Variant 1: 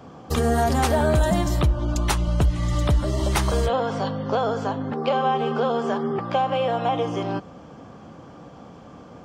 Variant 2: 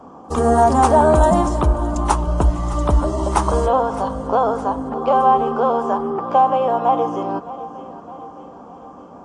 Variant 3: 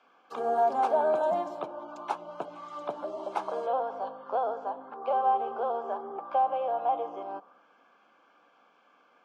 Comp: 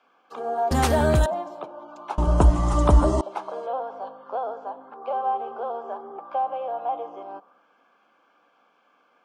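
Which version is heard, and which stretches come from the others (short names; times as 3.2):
3
0.71–1.26 from 1
2.18–3.21 from 2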